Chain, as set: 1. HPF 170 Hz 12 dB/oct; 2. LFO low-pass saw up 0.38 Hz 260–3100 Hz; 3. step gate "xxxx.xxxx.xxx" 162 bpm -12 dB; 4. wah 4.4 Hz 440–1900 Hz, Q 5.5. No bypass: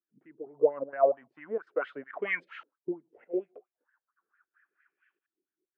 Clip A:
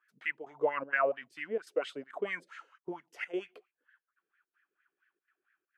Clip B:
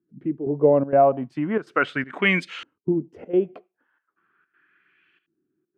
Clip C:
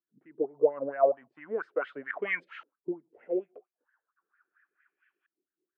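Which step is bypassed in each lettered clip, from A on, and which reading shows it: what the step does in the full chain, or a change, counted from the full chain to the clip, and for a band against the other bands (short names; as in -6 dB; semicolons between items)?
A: 2, 2 kHz band +5.0 dB; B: 4, 125 Hz band +16.0 dB; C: 3, momentary loudness spread change -3 LU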